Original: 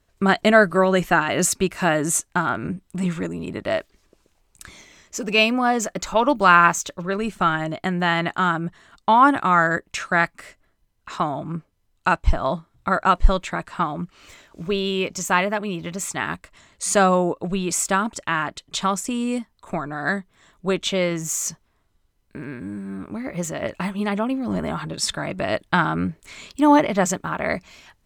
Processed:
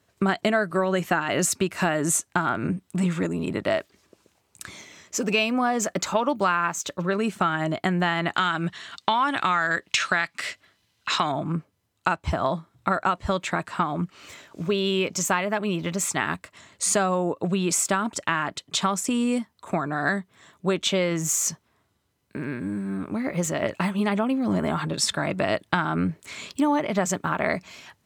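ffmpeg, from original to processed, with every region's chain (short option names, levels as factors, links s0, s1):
-filter_complex "[0:a]asettb=1/sr,asplit=3[s0][s1][s2];[s0]atrim=end=8.354[s3];[s1]atrim=start=8.35:end=11.32,asetpts=PTS-STARTPTS,afade=t=in:d=0.004:c=qsin,afade=t=out:st=2.966:d=0.004:c=qsin,equalizer=f=3600:t=o:w=2.3:g=14.5,acompressor=threshold=0.1:ratio=1.5:attack=3.2:release=140:knee=1:detection=peak[s4];[s2]atrim=start=11.316[s5];[s3][s4]acrossfade=d=0.004:c1=hsin:c2=qsin[s6];[s6][s5]acrossfade=d=0.004:c1=qsin:c2=hsin,highpass=f=86:w=0.5412,highpass=f=86:w=1.3066,acompressor=threshold=0.0794:ratio=6,volume=1.33"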